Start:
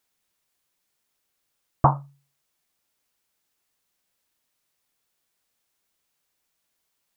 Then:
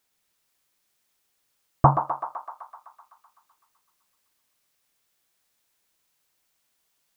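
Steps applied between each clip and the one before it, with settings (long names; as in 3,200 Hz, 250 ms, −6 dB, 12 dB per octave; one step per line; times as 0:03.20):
feedback echo with a high-pass in the loop 127 ms, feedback 78%, high-pass 570 Hz, level −6 dB
level +1.5 dB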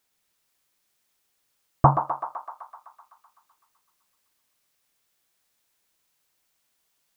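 no processing that can be heard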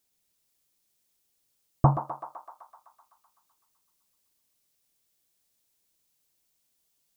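parametric band 1,400 Hz −10 dB 2.4 octaves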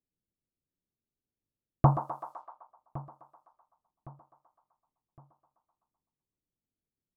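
low-pass that shuts in the quiet parts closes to 310 Hz, open at −34.5 dBFS
repeating echo 1,112 ms, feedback 38%, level −18.5 dB
level −1.5 dB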